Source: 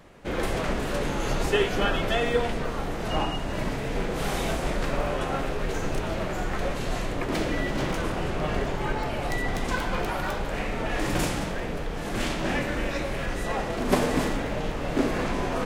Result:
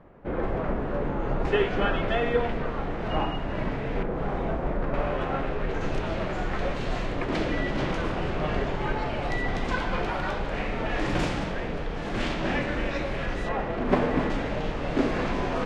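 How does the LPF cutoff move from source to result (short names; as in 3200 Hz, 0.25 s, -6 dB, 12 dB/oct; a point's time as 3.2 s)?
1300 Hz
from 1.45 s 2500 Hz
from 4.03 s 1300 Hz
from 4.94 s 2600 Hz
from 5.81 s 4300 Hz
from 13.49 s 2400 Hz
from 14.3 s 4800 Hz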